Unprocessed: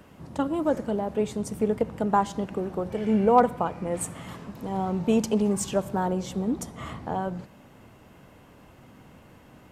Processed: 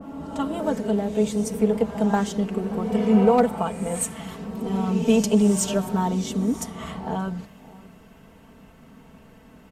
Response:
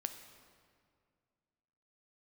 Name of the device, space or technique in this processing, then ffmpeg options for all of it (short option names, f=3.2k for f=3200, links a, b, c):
reverse reverb: -filter_complex "[0:a]lowshelf=f=230:g=4,aecho=1:1:4.5:0.69,asplit=2[a][b];[b]adelay=577.3,volume=-21dB,highshelf=f=4k:g=-13[c];[a][c]amix=inputs=2:normalize=0,areverse[d];[1:a]atrim=start_sample=2205[e];[d][e]afir=irnorm=-1:irlink=0,areverse,adynamicequalizer=threshold=0.00794:dfrequency=1800:dqfactor=0.7:tfrequency=1800:tqfactor=0.7:attack=5:release=100:ratio=0.375:range=3:mode=boostabove:tftype=highshelf"